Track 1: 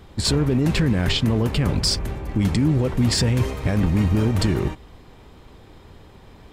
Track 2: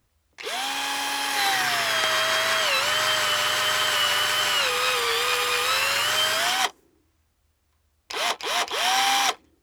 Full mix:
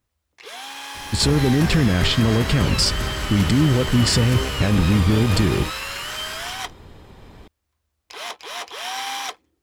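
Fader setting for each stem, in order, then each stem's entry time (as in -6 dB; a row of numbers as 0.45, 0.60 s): +2.0, -7.0 dB; 0.95, 0.00 s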